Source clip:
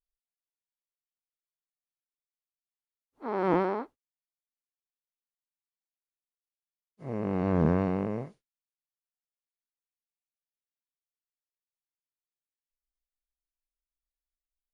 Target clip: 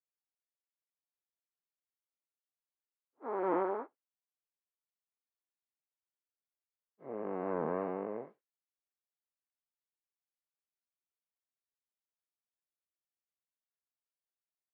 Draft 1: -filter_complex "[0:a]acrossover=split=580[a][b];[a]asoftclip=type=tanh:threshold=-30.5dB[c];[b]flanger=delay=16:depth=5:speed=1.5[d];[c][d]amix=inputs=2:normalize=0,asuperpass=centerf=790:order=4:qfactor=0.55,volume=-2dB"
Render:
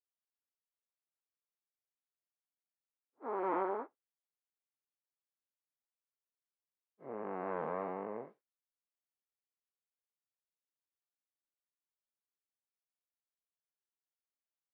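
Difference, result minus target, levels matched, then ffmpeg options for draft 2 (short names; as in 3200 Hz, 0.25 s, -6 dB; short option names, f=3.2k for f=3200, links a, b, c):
soft clip: distortion +11 dB
-filter_complex "[0:a]acrossover=split=580[a][b];[a]asoftclip=type=tanh:threshold=-19dB[c];[b]flanger=delay=16:depth=5:speed=1.5[d];[c][d]amix=inputs=2:normalize=0,asuperpass=centerf=790:order=4:qfactor=0.55,volume=-2dB"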